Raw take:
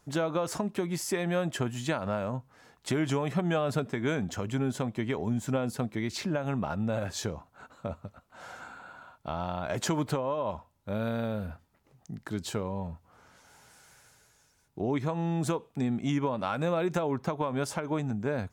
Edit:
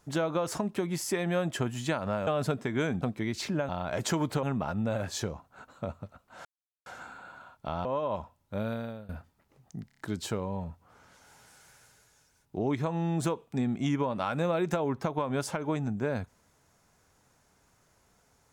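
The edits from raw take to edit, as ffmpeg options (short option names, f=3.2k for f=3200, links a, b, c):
-filter_complex "[0:a]asplit=12[a][b][c][d][e][f][g][h][i][j][k][l];[a]atrim=end=2.272[m];[b]atrim=start=3.548:end=4.302[n];[c]atrim=start=5.778:end=6.452[o];[d]atrim=start=9.458:end=10.202[p];[e]atrim=start=6.448:end=8.47,asetpts=PTS-STARTPTS,afade=t=out:st=2.018:d=0.004:c=hsin,apad=pad_dur=0.41[q];[f]atrim=start=8.47:end=9.462,asetpts=PTS-STARTPTS,afade=t=in:d=0.004:c=hsin[r];[g]atrim=start=10.198:end=11.44,asetpts=PTS-STARTPTS,afade=t=out:st=0.722:d=0.52:silence=0.105925[s];[h]atrim=start=11.44:end=12.262,asetpts=PTS-STARTPTS,afade=t=in:d=0.004:c=hsin:silence=0.105925[t];[i]atrim=start=12.228:end=12.262[u];[j]atrim=start=12.228:end=12.262[v];[k]atrim=start=12.228:end=12.262[w];[l]atrim=start=12.228[x];[m][n]acrossfade=d=0.004:c1=hsin:c2=hsin[y];[y][o]acrossfade=d=0.004:c1=hsin:c2=hsin[z];[z][p]acrossfade=d=0.004:c1=hsin:c2=hsin[aa];[q][r]concat=n=2:v=0:a=1[ab];[aa][ab]acrossfade=d=0.004:c1=hsin:c2=hsin[ac];[s][t]concat=n=2:v=0:a=1[ad];[ac][ad]acrossfade=d=0.004:c1=hsin:c2=hsin[ae];[ae][u]acrossfade=d=0.004:c1=hsin:c2=hsin[af];[af][v]acrossfade=d=0.004:c1=hsin:c2=hsin[ag];[ag][w]acrossfade=d=0.004:c1=hsin:c2=hsin[ah];[ah][x]acrossfade=d=0.004:c1=hsin:c2=hsin"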